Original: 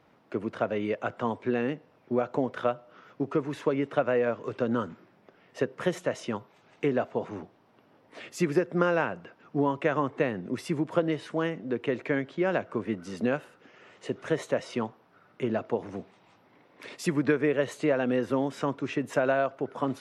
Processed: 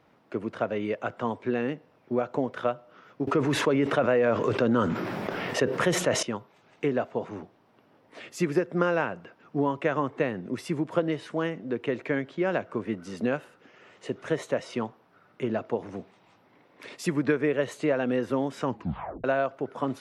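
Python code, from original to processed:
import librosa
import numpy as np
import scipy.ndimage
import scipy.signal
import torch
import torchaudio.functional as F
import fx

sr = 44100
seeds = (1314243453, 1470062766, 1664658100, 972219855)

y = fx.env_flatten(x, sr, amount_pct=70, at=(3.27, 6.23))
y = fx.edit(y, sr, fx.tape_stop(start_s=18.65, length_s=0.59), tone=tone)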